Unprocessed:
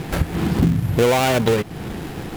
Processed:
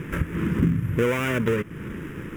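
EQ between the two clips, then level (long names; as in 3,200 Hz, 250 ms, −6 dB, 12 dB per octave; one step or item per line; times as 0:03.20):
low-shelf EQ 160 Hz −7 dB
high-shelf EQ 4,200 Hz −11 dB
phaser with its sweep stopped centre 1,800 Hz, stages 4
0.0 dB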